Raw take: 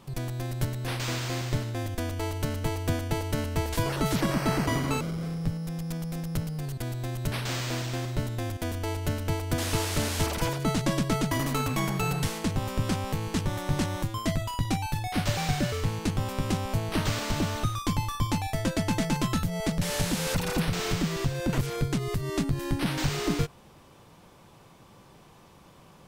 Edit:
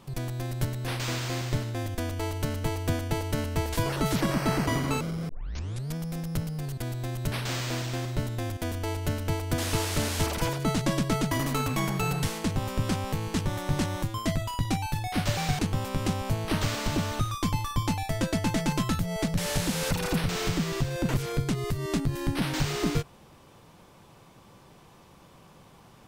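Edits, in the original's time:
5.29 s: tape start 0.66 s
15.59–16.03 s: delete

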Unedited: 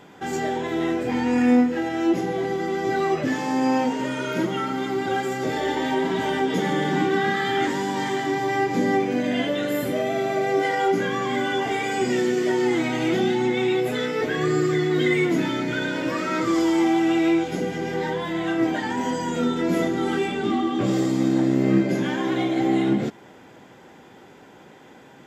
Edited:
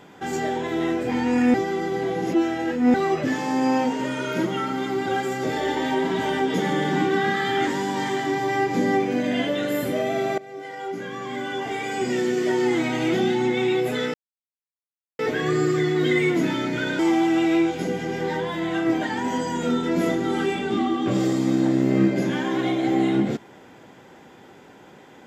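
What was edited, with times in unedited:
1.54–2.94 s: reverse
10.38–12.56 s: fade in, from -20 dB
14.14 s: insert silence 1.05 s
15.94–16.72 s: delete

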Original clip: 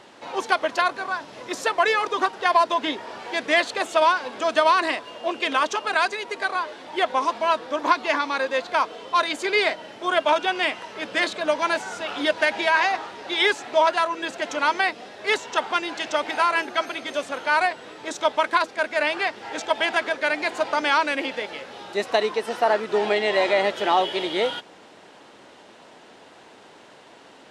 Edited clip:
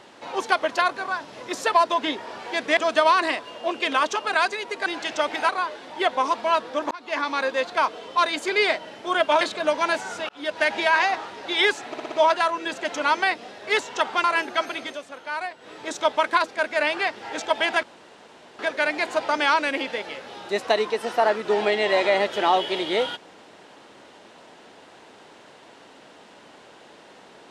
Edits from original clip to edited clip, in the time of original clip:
1.73–2.53 s: delete
3.57–4.37 s: delete
7.88–8.27 s: fade in
10.38–11.22 s: delete
12.10–12.49 s: fade in
13.69 s: stutter 0.06 s, 5 plays
15.81–16.44 s: move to 6.46 s
17.04–17.94 s: dip -9.5 dB, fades 0.15 s
20.03 s: insert room tone 0.76 s

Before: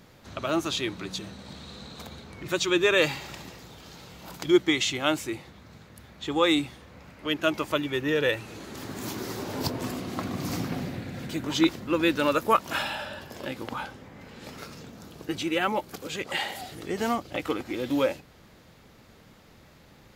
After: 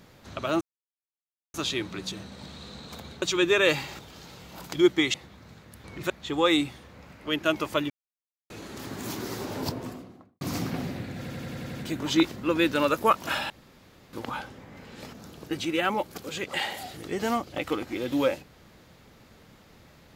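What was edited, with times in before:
0.61 s: insert silence 0.93 s
2.29–2.55 s: move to 6.08 s
3.32–3.69 s: delete
4.84–5.38 s: delete
7.88–8.48 s: mute
9.43–10.39 s: studio fade out
11.17 s: stutter 0.09 s, 7 plays
12.94–13.57 s: room tone
14.57–14.91 s: delete

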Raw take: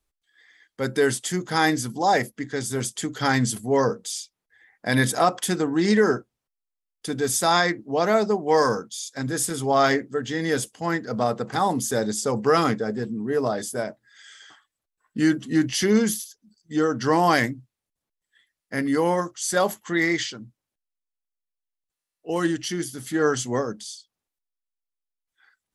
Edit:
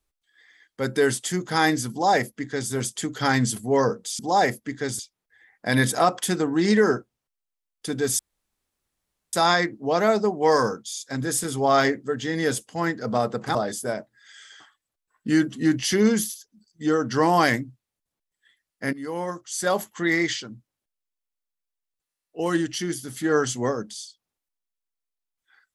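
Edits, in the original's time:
1.91–2.71 s: copy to 4.19 s
7.39 s: insert room tone 1.14 s
11.61–13.45 s: delete
18.83–20.17 s: fade in equal-power, from -16 dB

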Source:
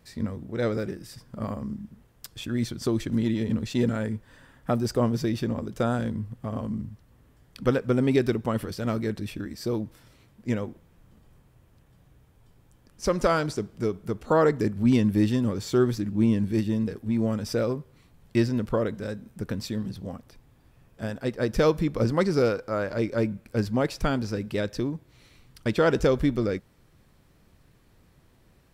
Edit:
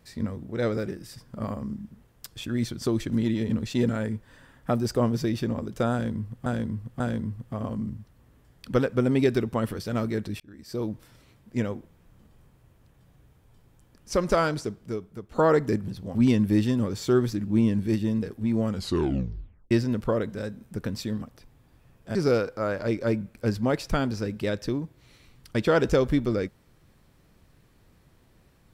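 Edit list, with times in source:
5.92–6.46 s: loop, 3 plays
9.32–9.84 s: fade in linear
13.38–14.23 s: fade out, to -12.5 dB
17.34 s: tape stop 1.02 s
19.87–20.14 s: move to 14.80 s
21.07–22.26 s: delete

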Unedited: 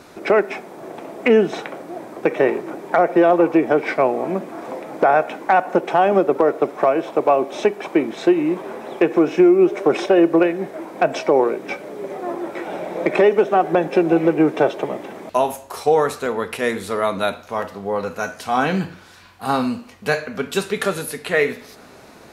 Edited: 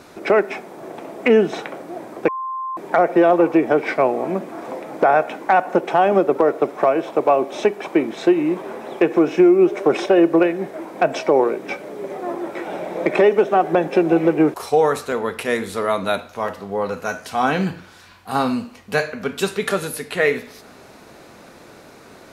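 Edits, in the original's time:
2.28–2.77 s: bleep 1.05 kHz -23.5 dBFS
14.54–15.68 s: delete

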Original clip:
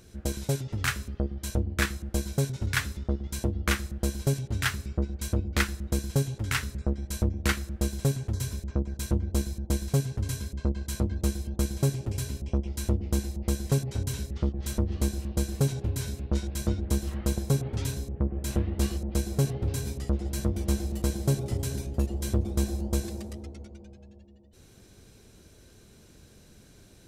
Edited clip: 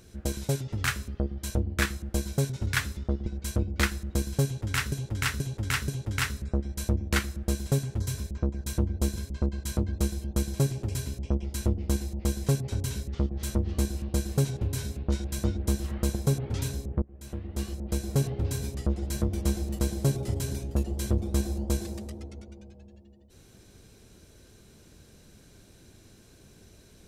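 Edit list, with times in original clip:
3.26–5.03 s: delete
6.21–6.69 s: loop, 4 plays
9.49–10.39 s: delete
18.25–19.43 s: fade in, from -23 dB

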